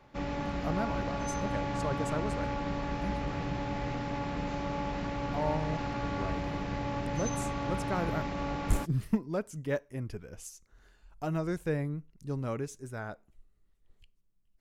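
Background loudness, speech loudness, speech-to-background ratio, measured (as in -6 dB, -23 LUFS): -35.0 LUFS, -37.0 LUFS, -2.0 dB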